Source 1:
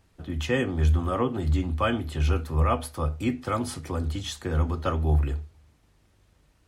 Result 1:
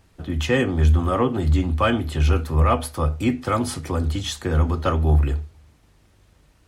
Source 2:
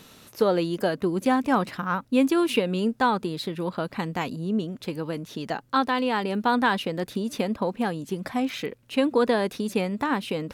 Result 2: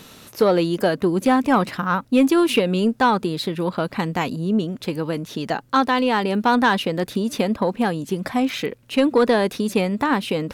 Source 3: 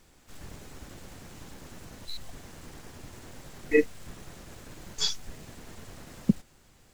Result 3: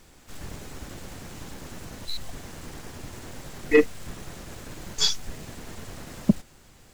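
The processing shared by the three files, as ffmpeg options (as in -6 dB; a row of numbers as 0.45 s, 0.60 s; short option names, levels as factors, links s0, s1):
-af "asoftclip=type=tanh:threshold=0.237,volume=2"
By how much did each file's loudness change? +5.5 LU, +5.0 LU, +4.5 LU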